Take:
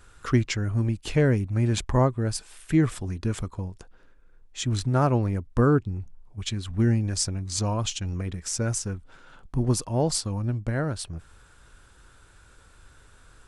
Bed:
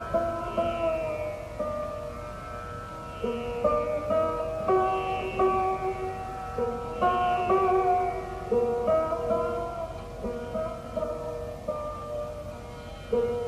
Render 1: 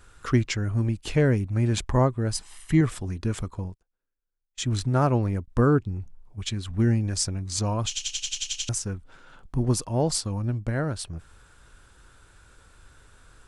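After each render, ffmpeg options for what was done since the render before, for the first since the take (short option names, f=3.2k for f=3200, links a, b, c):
-filter_complex "[0:a]asettb=1/sr,asplit=3[a][b][c];[a]atrim=end=2.324[d];[b]atrim=start=2.32:end=2.81,asetpts=PTS-STARTPTS,afade=t=in:d=0.004:c=qsin,afade=t=out:st=0.486:d=0.004:c=qsin,aecho=1:1:1:0.54,atrim=end_sample=21609[e];[c]atrim=start=2.806[f];[d][e]acrossfade=d=0.004:c1=hsin:c2=qsin[g];[g][f]acrossfade=d=0.004:c1=qsin:c2=hsin,asettb=1/sr,asplit=3[h][i][j];[h]atrim=end=3.644[k];[i]atrim=start=3.64:end=5.48,asetpts=PTS-STARTPTS,afade=t=in:d=0.004:c=qsin,afade=t=out:st=1.836:d=0.004:c=qsin,agate=range=-31dB:threshold=-41dB:ratio=16:release=100:detection=peak[l];[j]atrim=start=5.476[m];[k][l]acrossfade=d=0.004:c1=hsin:c2=qsin[n];[n][m]acrossfade=d=0.004:c1=qsin:c2=hsin,asplit=10[o][p][q][r][s][t][u][v][w][x];[o]atrim=end=7.972[y];[p]atrim=start=7.878:end=7.972[z];[q]atrim=start=7.878:end=7.972[aa];[r]atrim=start=7.878:end=7.972[ab];[s]atrim=start=7.878:end=7.972[ac];[t]atrim=start=7.878:end=7.972[ad];[u]atrim=start=7.878:end=7.972[ae];[v]atrim=start=7.878:end=7.972[af];[w]atrim=start=7.878:end=7.972[ag];[x]atrim=start=8.688[ah];[y][z]acrossfade=d=0.004:c1=hsin:c2=hsin[ai];[ai][aa]acrossfade=d=0.004:c1=hsin:c2=hsin[aj];[aj][ab]acrossfade=d=0.004:c1=hsin:c2=hsin[ak];[ak][ac]acrossfade=d=0.004:c1=hsin:c2=hsin[al];[al][ad]acrossfade=d=0.004:c1=hsin:c2=hsin[am];[am][ae]acrossfade=d=0.004:c1=hsin:c2=hsin[an];[an][af]acrossfade=d=0.004:c1=hsin:c2=hsin[ao];[ao][ag]acrossfade=d=0.004:c1=hsin:c2=hsin[ap];[ap][ah]acrossfade=d=0.004:c1=hsin:c2=hsin"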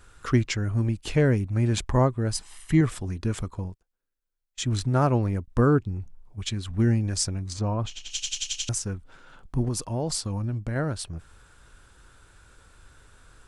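-filter_complex "[0:a]asplit=3[a][b][c];[a]afade=t=out:st=7.52:d=0.02[d];[b]lowpass=f=1.4k:p=1,afade=t=in:st=7.52:d=0.02,afade=t=out:st=8.1:d=0.02[e];[c]afade=t=in:st=8.1:d=0.02[f];[d][e][f]amix=inputs=3:normalize=0,asettb=1/sr,asplit=3[g][h][i];[g]atrim=end=9.684[j];[h]atrim=start=9.68:end=10.76,asetpts=PTS-STARTPTS,afade=t=in:d=0.004:c=qsin,afade=t=out:st=1.076:d=0.004:c=qsin,acompressor=threshold=-24dB:ratio=4:attack=3.2:release=140:knee=1:detection=peak[k];[i]atrim=start=10.756[l];[j][k]acrossfade=d=0.004:c1=hsin:c2=qsin[m];[m][l]acrossfade=d=0.004:c1=qsin:c2=hsin"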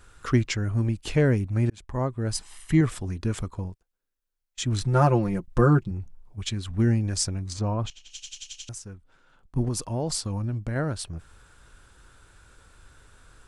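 -filter_complex "[0:a]asettb=1/sr,asplit=3[a][b][c];[a]atrim=end=4.814[d];[b]atrim=start=4.81:end=5.91,asetpts=PTS-STARTPTS,afade=t=in:d=0.004:c=qsin,afade=t=out:st=1.096:d=0.004:c=qsin,aecho=1:1:5.7:0.8,atrim=end_sample=48510[e];[c]atrim=start=5.906[f];[d][e]acrossfade=d=0.004:c1=hsin:c2=qsin[g];[g][f]acrossfade=d=0.004:c1=qsin:c2=hsin,asplit=4[h][i][j][k];[h]atrim=end=1.7,asetpts=PTS-STARTPTS,afade=t=out:st=1.696:d=0.004:c=hsin[l];[i]atrim=start=1.7:end=7.902,asetpts=PTS-STARTPTS,afade=t=in:d=0.66[m];[j]atrim=start=7.898:end=9.562,asetpts=PTS-STARTPTS,volume=-10dB[n];[k]atrim=start=9.558[o];[l][m]concat=n=2:v=0:a=1[p];[p][n]acrossfade=d=0.004:c1=hsin:c2=hsin[q];[q][o]acrossfade=d=0.004:c1=hsin:c2=hsin"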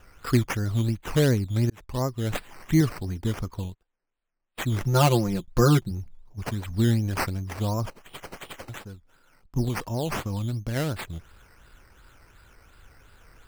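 -af "acrusher=samples=10:mix=1:aa=0.000001:lfo=1:lforange=6:lforate=2.8"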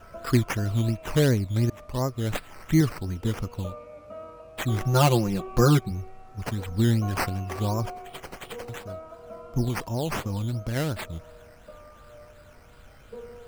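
-filter_complex "[1:a]volume=-15.5dB[a];[0:a][a]amix=inputs=2:normalize=0"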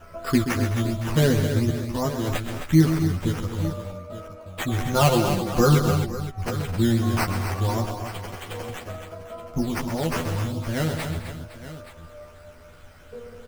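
-filter_complex "[0:a]asplit=2[a][b];[b]adelay=12,volume=-2.5dB[c];[a][c]amix=inputs=2:normalize=0,aecho=1:1:129|210|262|513|876:0.355|0.2|0.376|0.178|0.2"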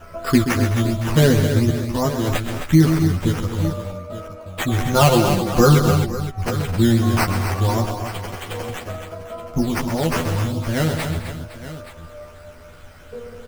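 -af "volume=5dB,alimiter=limit=-3dB:level=0:latency=1"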